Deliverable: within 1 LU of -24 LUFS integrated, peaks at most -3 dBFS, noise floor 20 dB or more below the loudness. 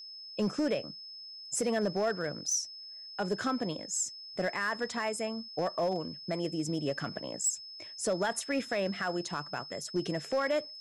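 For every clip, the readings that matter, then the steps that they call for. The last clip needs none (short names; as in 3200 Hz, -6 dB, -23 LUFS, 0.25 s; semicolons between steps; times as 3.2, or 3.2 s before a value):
clipped 0.8%; flat tops at -23.5 dBFS; steady tone 5200 Hz; tone level -44 dBFS; loudness -33.0 LUFS; peak -23.5 dBFS; loudness target -24.0 LUFS
-> clip repair -23.5 dBFS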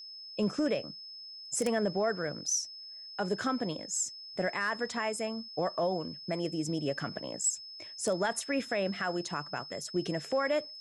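clipped 0.0%; steady tone 5200 Hz; tone level -44 dBFS
-> notch 5200 Hz, Q 30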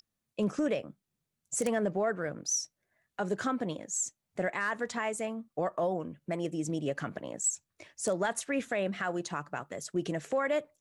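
steady tone none; loudness -33.0 LUFS; peak -14.5 dBFS; loudness target -24.0 LUFS
-> gain +9 dB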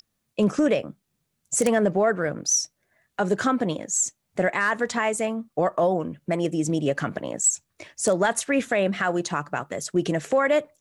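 loudness -24.0 LUFS; peak -5.5 dBFS; noise floor -77 dBFS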